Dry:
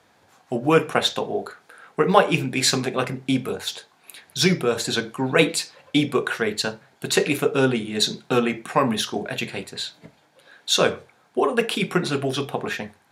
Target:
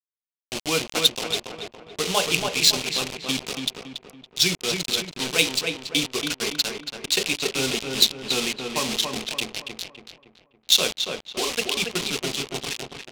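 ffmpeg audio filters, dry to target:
-filter_complex "[0:a]highpass=110,equalizer=f=11k:t=o:w=1.7:g=-5,acrossover=split=1200[a][b];[b]acompressor=mode=upward:threshold=-38dB:ratio=2.5[c];[a][c]amix=inputs=2:normalize=0,acrusher=bits=3:mix=0:aa=0.000001,adynamicsmooth=sensitivity=1.5:basefreq=2.6k,asplit=2[d][e];[e]adelay=281,lowpass=f=2.2k:p=1,volume=-4dB,asplit=2[f][g];[g]adelay=281,lowpass=f=2.2k:p=1,volume=0.47,asplit=2[h][i];[i]adelay=281,lowpass=f=2.2k:p=1,volume=0.47,asplit=2[j][k];[k]adelay=281,lowpass=f=2.2k:p=1,volume=0.47,asplit=2[l][m];[m]adelay=281,lowpass=f=2.2k:p=1,volume=0.47,asplit=2[n][o];[o]adelay=281,lowpass=f=2.2k:p=1,volume=0.47[p];[f][h][j][l][n][p]amix=inputs=6:normalize=0[q];[d][q]amix=inputs=2:normalize=0,aexciter=amount=7.5:drive=3.5:freq=2.4k,volume=-9.5dB"

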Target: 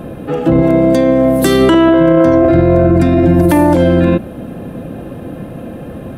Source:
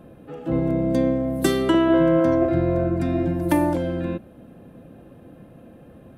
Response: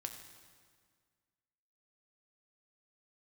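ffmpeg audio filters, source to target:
-filter_complex "[0:a]asettb=1/sr,asplit=3[a][b][c];[a]atrim=end=0.624[d];[b]atrim=start=0.62:end=1.44,asetpts=PTS-STARTPTS,afade=t=in:d=0.004:c=qsin,afade=t=out:st=0.816:d=0.004:c=qsin,lowshelf=f=270:g=-11[e];[c]atrim=start=1.436[f];[d][e]acrossfade=d=0.004:c1=hsin:c2=qsin[g];[g][f]acrossfade=d=0.004:c1=qsin:c2=hsin,alimiter=level_in=20dB:limit=-1dB:release=50:level=0:latency=1,volume=-1dB"

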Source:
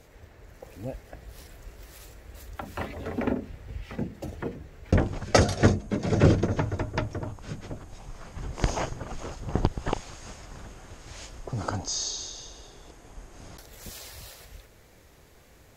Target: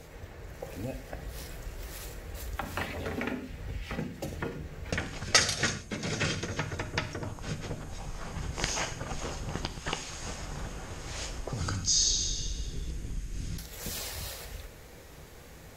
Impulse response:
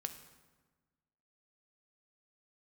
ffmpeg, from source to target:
-filter_complex "[0:a]asplit=3[a][b][c];[a]afade=t=out:st=11.6:d=0.02[d];[b]asubboost=boost=12:cutoff=240,afade=t=in:st=11.6:d=0.02,afade=t=out:st=13.57:d=0.02[e];[c]afade=t=in:st=13.57:d=0.02[f];[d][e][f]amix=inputs=3:normalize=0,acrossover=split=1600[g][h];[g]acompressor=threshold=-39dB:ratio=6[i];[i][h]amix=inputs=2:normalize=0[j];[1:a]atrim=start_sample=2205,afade=t=out:st=0.19:d=0.01,atrim=end_sample=8820[k];[j][k]afir=irnorm=-1:irlink=0,volume=7.5dB"

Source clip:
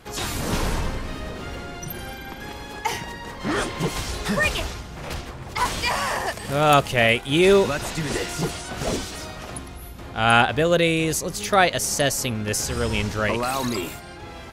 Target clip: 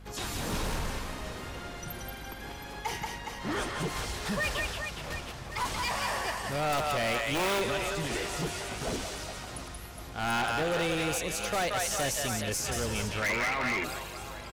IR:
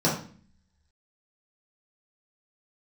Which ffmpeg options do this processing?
-filter_complex "[0:a]acrossover=split=460[a][b];[a]aeval=exprs='(mod(5.96*val(0)+1,2)-1)/5.96':c=same[c];[b]aecho=1:1:180|414|718.2|1114|1628:0.631|0.398|0.251|0.158|0.1[d];[c][d]amix=inputs=2:normalize=0,aeval=exprs='val(0)+0.01*(sin(2*PI*50*n/s)+sin(2*PI*2*50*n/s)/2+sin(2*PI*3*50*n/s)/3+sin(2*PI*4*50*n/s)/4+sin(2*PI*5*50*n/s)/5)':c=same,asettb=1/sr,asplit=3[e][f][g];[e]atrim=end=13.224[h];[f]atrim=start=13.22:end=13.84,asetpts=PTS-STARTPTS,afade=t=in:d=0.004:c=qsin,afade=t=out:st=0.616:d=0.004:c=qsin,lowpass=f=2.1k:t=q:w=8.4[i];[g]atrim=start=13.836[j];[h][i]acrossfade=d=0.004:c1=hsin:c2=qsin[k];[k][j]acrossfade=d=0.004:c1=qsin:c2=hsin,asoftclip=type=hard:threshold=-18dB,volume=-8dB"

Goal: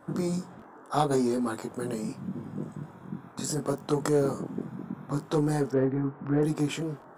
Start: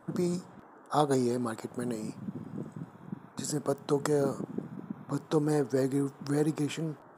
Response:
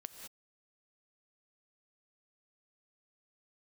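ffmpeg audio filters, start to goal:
-filter_complex "[0:a]asettb=1/sr,asplit=3[a][b][c];[a]atrim=end=5.714[d];[b]atrim=start=5.71:end=6.43,asetpts=PTS-STARTPTS,afade=t=in:d=0.004:c=qsin,afade=t=out:st=0.716:d=0.004:c=qsin,lowpass=f=2.1k:w=0.5412,lowpass=f=2.1k:w=1.3066[e];[c]atrim=start=6.426[f];[d][e]acrossfade=d=0.004:c1=hsin:c2=qsin[g];[g][f]acrossfade=d=0.004:c1=qsin:c2=hsin,flanger=delay=20:depth=2.7:speed=0.76,asplit=2[h][i];[i]asoftclip=type=tanh:threshold=-32dB,volume=-4.5dB[j];[h][j]amix=inputs=2:normalize=0,volume=2.5dB"

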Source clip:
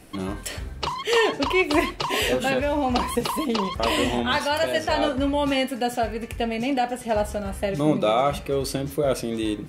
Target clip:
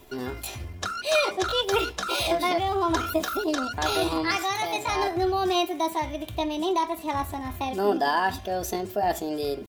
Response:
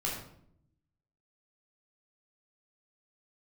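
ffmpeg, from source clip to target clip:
-af "asetrate=58866,aresample=44100,atempo=0.749154,aecho=1:1:2.9:0.41,volume=-3.5dB"

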